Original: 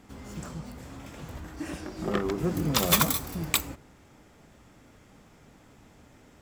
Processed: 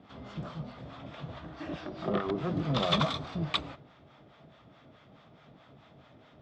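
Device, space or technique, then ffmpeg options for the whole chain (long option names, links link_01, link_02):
guitar amplifier with harmonic tremolo: -filter_complex "[0:a]acrossover=split=680[link_01][link_02];[link_01]aeval=exprs='val(0)*(1-0.7/2+0.7/2*cos(2*PI*4.7*n/s))':channel_layout=same[link_03];[link_02]aeval=exprs='val(0)*(1-0.7/2-0.7/2*cos(2*PI*4.7*n/s))':channel_layout=same[link_04];[link_03][link_04]amix=inputs=2:normalize=0,asoftclip=type=tanh:threshold=-20dB,highpass=84,equalizer=frequency=140:width_type=q:width=4:gain=7,equalizer=frequency=650:width_type=q:width=4:gain=9,equalizer=frequency=1200:width_type=q:width=4:gain=6,equalizer=frequency=3500:width_type=q:width=4:gain=8,lowpass=frequency=4400:width=0.5412,lowpass=frequency=4400:width=1.3066"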